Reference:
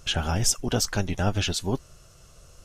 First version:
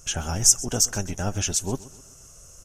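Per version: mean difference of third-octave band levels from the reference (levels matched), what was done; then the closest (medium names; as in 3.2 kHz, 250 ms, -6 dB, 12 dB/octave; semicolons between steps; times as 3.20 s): 5.0 dB: resonant high shelf 5.1 kHz +7 dB, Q 3; gain riding within 4 dB 2 s; on a send: feedback delay 128 ms, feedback 47%, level -19 dB; on the sum: trim -4.5 dB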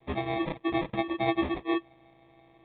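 12.5 dB: in parallel at -10 dB: hard clipper -20 dBFS, distortion -11 dB; on the sum: vocoder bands 32, saw 335 Hz; sample-and-hold 30×; trim -3.5 dB; µ-law 64 kbps 8 kHz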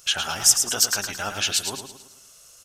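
9.0 dB: tilt EQ +4 dB/octave; de-hum 62.32 Hz, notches 5; on a send: feedback delay 109 ms, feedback 45%, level -7 dB; on the sum: dynamic bell 1.3 kHz, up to +6 dB, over -40 dBFS, Q 1.2; trim -3.5 dB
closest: first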